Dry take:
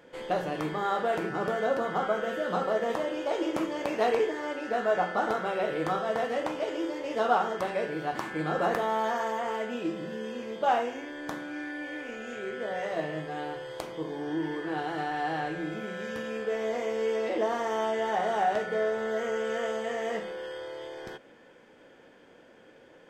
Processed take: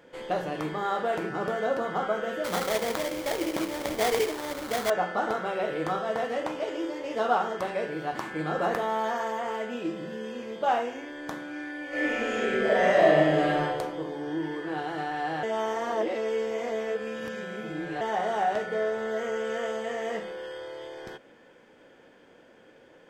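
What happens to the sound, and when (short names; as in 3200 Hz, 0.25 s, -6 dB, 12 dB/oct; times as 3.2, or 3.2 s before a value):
2.44–4.9 sample-rate reducer 2700 Hz, jitter 20%
11.88–13.61 reverb throw, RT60 1.4 s, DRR -11 dB
15.43–18.01 reverse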